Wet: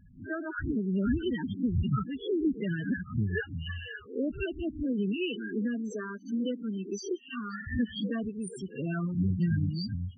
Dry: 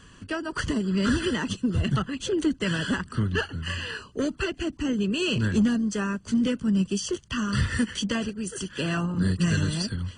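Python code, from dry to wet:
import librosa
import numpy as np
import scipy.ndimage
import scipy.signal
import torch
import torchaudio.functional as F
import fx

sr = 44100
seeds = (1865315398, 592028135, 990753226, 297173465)

y = fx.spec_swells(x, sr, rise_s=0.33)
y = fx.highpass(y, sr, hz=250.0, slope=24, at=(5.17, 7.67))
y = fx.spec_topn(y, sr, count=8)
y = y * librosa.db_to_amplitude(-4.0)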